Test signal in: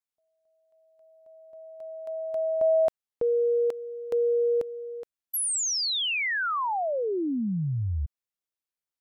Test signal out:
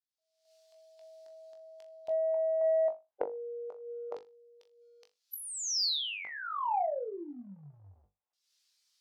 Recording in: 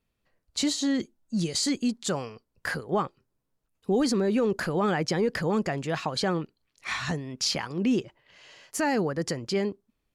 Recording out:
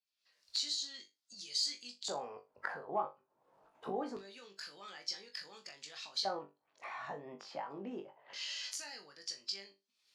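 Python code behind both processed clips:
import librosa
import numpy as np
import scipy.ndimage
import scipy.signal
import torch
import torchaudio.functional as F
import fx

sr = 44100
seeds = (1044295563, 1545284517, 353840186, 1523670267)

y = fx.spec_quant(x, sr, step_db=15)
y = fx.recorder_agc(y, sr, target_db=-22.0, rise_db_per_s=60.0, max_gain_db=31)
y = fx.filter_lfo_bandpass(y, sr, shape='square', hz=0.24, low_hz=780.0, high_hz=4700.0, q=2.4)
y = fx.low_shelf(y, sr, hz=72.0, db=-9.0)
y = fx.room_flutter(y, sr, wall_m=3.5, rt60_s=0.23)
y = 10.0 ** (-13.0 / 20.0) * np.tanh(y / 10.0 ** (-13.0 / 20.0))
y = F.gain(torch.from_numpy(y), -4.5).numpy()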